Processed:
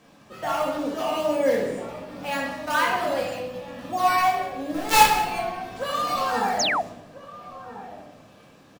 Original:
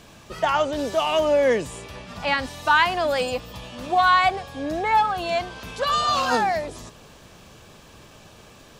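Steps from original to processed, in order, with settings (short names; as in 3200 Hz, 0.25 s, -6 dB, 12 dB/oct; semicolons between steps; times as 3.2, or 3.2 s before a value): HPF 130 Hz 12 dB/oct; high shelf 4200 Hz -3.5 dB; in parallel at -4.5 dB: decimation with a swept rate 9×, swing 100% 2 Hz; on the sum: outdoor echo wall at 230 m, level -13 dB; 4.74–5.2 companded quantiser 2-bit; on a send: echo 0.183 s -18 dB; on the sum: shoebox room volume 420 m³, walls mixed, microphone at 2.1 m; 6.59–6.82 painted sound fall 590–7400 Hz -11 dBFS; gain -12.5 dB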